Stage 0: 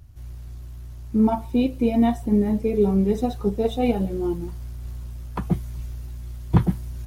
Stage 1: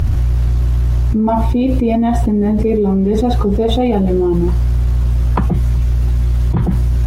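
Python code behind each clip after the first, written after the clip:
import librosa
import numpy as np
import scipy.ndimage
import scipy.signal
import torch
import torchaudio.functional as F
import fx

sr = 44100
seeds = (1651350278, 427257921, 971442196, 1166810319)

y = fx.lowpass(x, sr, hz=2600.0, slope=6)
y = fx.env_flatten(y, sr, amount_pct=100)
y = F.gain(torch.from_numpy(y), -1.5).numpy()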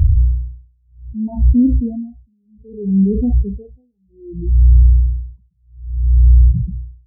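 y = fx.tilt_shelf(x, sr, db=9.5, hz=1200.0)
y = y * (1.0 - 0.91 / 2.0 + 0.91 / 2.0 * np.cos(2.0 * np.pi * 0.63 * (np.arange(len(y)) / sr)))
y = fx.spectral_expand(y, sr, expansion=2.5)
y = F.gain(torch.from_numpy(y), -4.5).numpy()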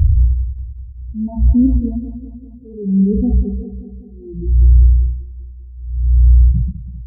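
y = fx.echo_feedback(x, sr, ms=196, feedback_pct=59, wet_db=-12)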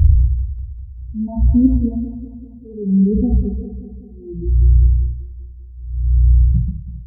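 y = fx.doubler(x, sr, ms=43.0, db=-8.5)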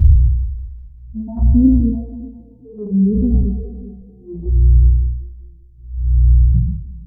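y = fx.spec_trails(x, sr, decay_s=0.87)
y = fx.env_flanger(y, sr, rest_ms=8.2, full_db=-7.5)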